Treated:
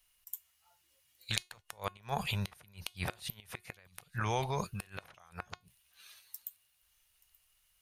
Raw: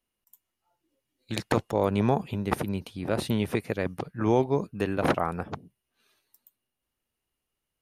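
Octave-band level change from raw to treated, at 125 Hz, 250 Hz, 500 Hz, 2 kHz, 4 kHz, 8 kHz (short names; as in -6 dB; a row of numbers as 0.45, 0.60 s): -9.0, -18.0, -16.5, -6.0, -0.5, 0.0 dB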